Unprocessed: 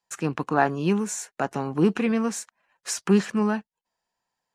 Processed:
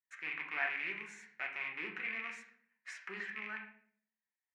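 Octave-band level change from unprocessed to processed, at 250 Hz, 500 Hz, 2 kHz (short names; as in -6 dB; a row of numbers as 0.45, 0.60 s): -32.5, -26.5, -3.0 dB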